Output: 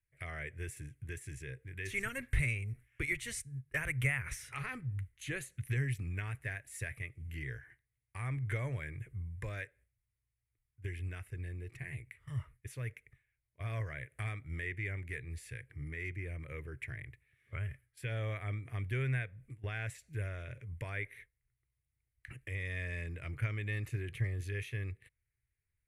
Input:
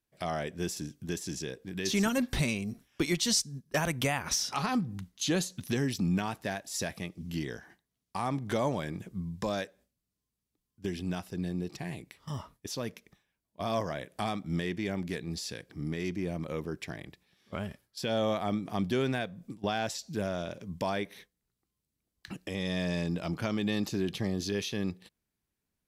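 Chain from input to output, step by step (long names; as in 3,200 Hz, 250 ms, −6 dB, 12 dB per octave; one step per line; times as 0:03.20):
drawn EQ curve 130 Hz 0 dB, 180 Hz −28 dB, 450 Hz −15 dB, 830 Hz −26 dB, 2,100 Hz 0 dB, 3,400 Hz −21 dB, 5,100 Hz −30 dB, 9,700 Hz −8 dB, 15,000 Hz −21 dB
level +4.5 dB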